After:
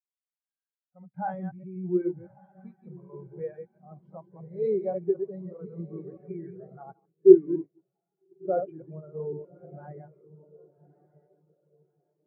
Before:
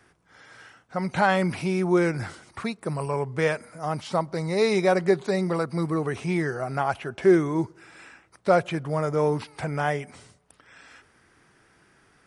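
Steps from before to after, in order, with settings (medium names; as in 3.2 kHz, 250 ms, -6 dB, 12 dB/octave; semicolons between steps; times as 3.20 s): chunks repeated in reverse 126 ms, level -3 dB; on a send: echo that smears into a reverb 1192 ms, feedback 57%, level -6.5 dB; 6.93–8.57 s: on the sum: gate -23 dBFS, range -9 dB; in parallel at -6 dB: companded quantiser 4-bit; on the sum: spectral contrast expander 2.5:1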